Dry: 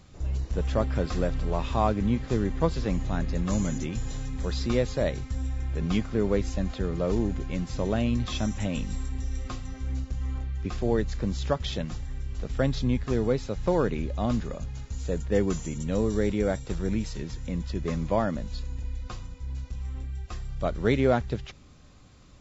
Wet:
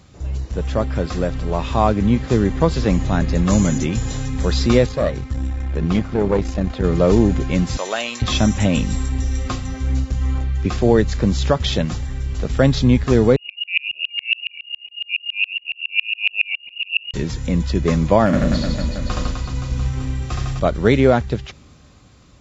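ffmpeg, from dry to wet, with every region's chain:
ffmpeg -i in.wav -filter_complex "[0:a]asettb=1/sr,asplit=3[link_01][link_02][link_03];[link_01]atrim=end=4.864[link_04];[link_02]atrim=start=4.86:end=6.84,asetpts=PTS-STARTPTS,afade=type=in:duration=0.004:curve=qsin,afade=type=out:start_time=1.976:duration=0.004:curve=qsin,lowpass=frequency=3300:poles=1,aeval=exprs='(tanh(10*val(0)+0.7)-tanh(0.7))/10':channel_layout=same[link_05];[link_03]atrim=start=6.836[link_06];[link_04][link_05]acrossfade=duration=0.004:curve1=hsin:curve2=qsin[link_07];[link_07][link_06]acrossfade=duration=0.004:curve1=qsin:curve2=hsin,asettb=1/sr,asplit=3[link_08][link_09][link_10];[link_08]atrim=end=7.774[link_11];[link_09]atrim=start=7.77:end=8.22,asetpts=PTS-STARTPTS,afade=type=in:duration=0.004:curve=qsin,afade=type=out:start_time=0.446:duration=0.004:curve=qsin,highpass=820,aemphasis=mode=production:type=cd[link_12];[link_10]atrim=start=8.216[link_13];[link_11][link_12]acrossfade=duration=0.004:curve1=hsin:curve2=qsin[link_14];[link_14][link_13]acrossfade=duration=0.004:curve1=qsin:curve2=hsin,asettb=1/sr,asplit=3[link_15][link_16][link_17];[link_15]atrim=end=13.364[link_18];[link_16]atrim=start=13.36:end=17.14,asetpts=PTS-STARTPTS,afade=type=in:duration=0.004:curve=qsin,afade=type=out:start_time=3.776:duration=0.004:curve=qsin,asuperstop=centerf=1400:order=4:qfactor=0.51,lowpass=frequency=2500:width_type=q:width=0.5098,lowpass=frequency=2500:width_type=q:width=0.6013,lowpass=frequency=2500:width_type=q:width=0.9,lowpass=frequency=2500:width_type=q:width=2.563,afreqshift=-2900,aeval=exprs='val(0)*pow(10,-36*if(lt(mod(-7.2*n/s,1),2*abs(-7.2)/1000),1-mod(-7.2*n/s,1)/(2*abs(-7.2)/1000),(mod(-7.2*n/s,1)-2*abs(-7.2)/1000)/(1-2*abs(-7.2)/1000))/20)':channel_layout=same[link_19];[link_17]atrim=start=17.136[link_20];[link_18][link_19]acrossfade=duration=0.004:curve1=hsin:curve2=qsin[link_21];[link_21][link_20]acrossfade=duration=0.004:curve1=qsin:curve2=hsin,asettb=1/sr,asplit=3[link_22][link_23][link_24];[link_22]atrim=end=18.264[link_25];[link_23]atrim=start=18.26:end=20.6,asetpts=PTS-STARTPTS,afade=type=in:duration=0.004:curve=qsin,afade=type=out:start_time=2.336:duration=0.004:curve=qsin,volume=22dB,asoftclip=hard,volume=-22dB,asplit=2[link_26][link_27];[link_27]adelay=38,volume=-8.5dB[link_28];[link_26][link_28]amix=inputs=2:normalize=0,atrim=end_sample=103194,aecho=1:1:70|154|254.8|375.8|520.9|695.1|904.1:0.794|0.631|0.501|0.398|0.316|0.251|0.2,atrim=end_sample=103194[link_29];[link_24]atrim=start=20.596[link_30];[link_25][link_29]acrossfade=duration=0.004:curve1=hsin:curve2=qsin[link_31];[link_31][link_30]acrossfade=duration=0.004:curve1=qsin:curve2=hsin,highpass=47,dynaudnorm=framelen=580:gausssize=7:maxgain=7.5dB,alimiter=level_in=6.5dB:limit=-1dB:release=50:level=0:latency=1,volume=-1dB" out.wav

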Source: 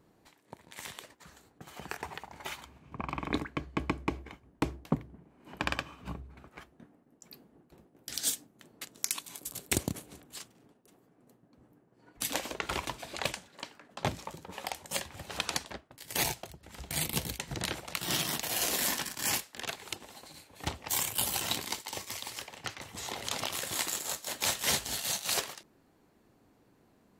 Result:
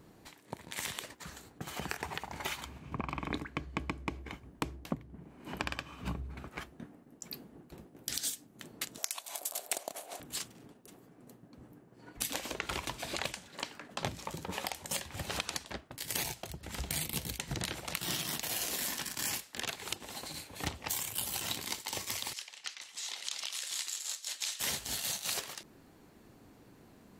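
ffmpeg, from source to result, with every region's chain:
ffmpeg -i in.wav -filter_complex "[0:a]asettb=1/sr,asplit=3[link_01][link_02][link_03];[link_01]atrim=end=8.984[link_04];[link_02]atrim=start=8.98:end=10.2,asetpts=PTS-STARTPTS,afade=type=in:duration=0.004:curve=qsin,afade=type=out:start_time=1.216:duration=0.004:curve=qsin,aeval=exprs='val(0)+0.00126*(sin(2*PI*60*n/s)+sin(2*PI*2*60*n/s)/2+sin(2*PI*3*60*n/s)/3+sin(2*PI*4*60*n/s)/4+sin(2*PI*5*60*n/s)/5)':channel_layout=same,highpass=frequency=670:width_type=q:width=4.8[link_05];[link_03]atrim=start=10.196[link_06];[link_04][link_05]acrossfade=duration=0.004:curve1=hsin:curve2=qsin[link_07];[link_07][link_06]acrossfade=duration=0.004:curve1=qsin:curve2=hsin,asettb=1/sr,asplit=3[link_08][link_09][link_10];[link_08]atrim=end=22.334[link_11];[link_09]atrim=start=22.33:end=24.6,asetpts=PTS-STARTPTS,afade=type=in:duration=0.004:curve=qsin,afade=type=out:start_time=2.266:duration=0.004:curve=qsin,highpass=140,lowpass=5400,aderivative[link_12];[link_10]atrim=start=24.596[link_13];[link_11][link_12]acrossfade=duration=0.004:curve1=hsin:curve2=qsin[link_14];[link_14][link_13]acrossfade=duration=0.004:curve1=qsin:curve2=hsin,equalizer=frequency=700:width_type=o:width=2.5:gain=-3,acompressor=threshold=-42dB:ratio=6,volume=8.5dB" out.wav

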